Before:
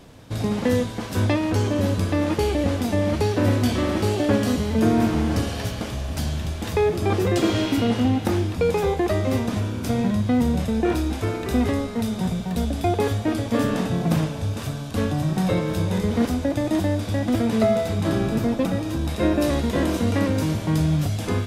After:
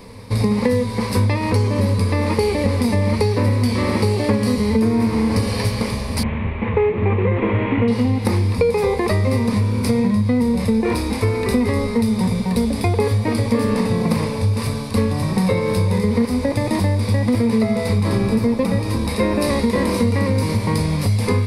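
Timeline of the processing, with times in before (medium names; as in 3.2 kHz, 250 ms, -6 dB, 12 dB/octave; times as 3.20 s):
6.23–7.88 s: CVSD coder 16 kbps
whole clip: rippled EQ curve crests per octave 0.91, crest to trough 12 dB; compression, threshold -20 dBFS; trim +6 dB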